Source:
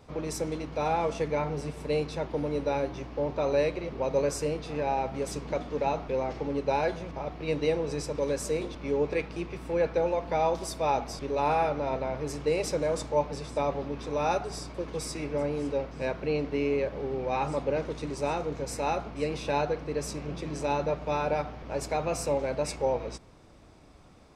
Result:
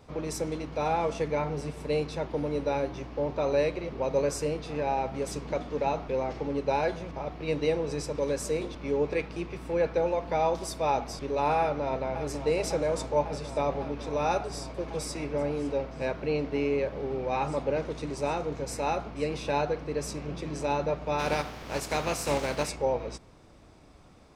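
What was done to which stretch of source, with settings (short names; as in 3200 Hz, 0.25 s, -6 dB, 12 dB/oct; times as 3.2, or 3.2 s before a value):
11.6–12.18 echo throw 0.55 s, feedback 85%, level -10 dB
21.18–22.68 spectral contrast lowered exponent 0.62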